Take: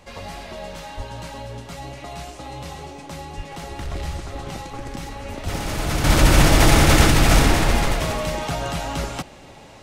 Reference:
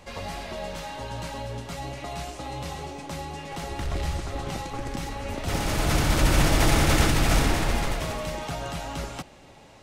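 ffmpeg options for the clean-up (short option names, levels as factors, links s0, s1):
-filter_complex "[0:a]asplit=3[s0][s1][s2];[s0]afade=t=out:st=0.96:d=0.02[s3];[s1]highpass=f=140:w=0.5412,highpass=f=140:w=1.3066,afade=t=in:st=0.96:d=0.02,afade=t=out:st=1.08:d=0.02[s4];[s2]afade=t=in:st=1.08:d=0.02[s5];[s3][s4][s5]amix=inputs=3:normalize=0,asplit=3[s6][s7][s8];[s6]afade=t=out:st=3.36:d=0.02[s9];[s7]highpass=f=140:w=0.5412,highpass=f=140:w=1.3066,afade=t=in:st=3.36:d=0.02,afade=t=out:st=3.48:d=0.02[s10];[s8]afade=t=in:st=3.48:d=0.02[s11];[s9][s10][s11]amix=inputs=3:normalize=0,asplit=3[s12][s13][s14];[s12]afade=t=out:st=5.43:d=0.02[s15];[s13]highpass=f=140:w=0.5412,highpass=f=140:w=1.3066,afade=t=in:st=5.43:d=0.02,afade=t=out:st=5.55:d=0.02[s16];[s14]afade=t=in:st=5.55:d=0.02[s17];[s15][s16][s17]amix=inputs=3:normalize=0,asetnsamples=n=441:p=0,asendcmd='6.04 volume volume -6.5dB',volume=1"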